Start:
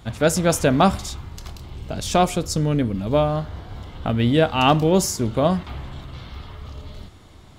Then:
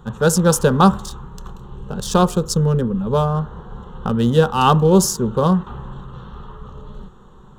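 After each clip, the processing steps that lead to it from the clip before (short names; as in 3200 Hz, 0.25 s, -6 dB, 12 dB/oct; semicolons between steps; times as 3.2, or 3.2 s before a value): Wiener smoothing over 9 samples; fixed phaser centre 440 Hz, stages 8; gain +6.5 dB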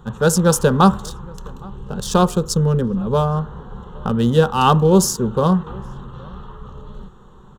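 outdoor echo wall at 140 m, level -25 dB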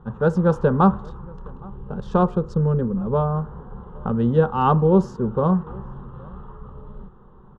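LPF 1400 Hz 12 dB/oct; gain -3 dB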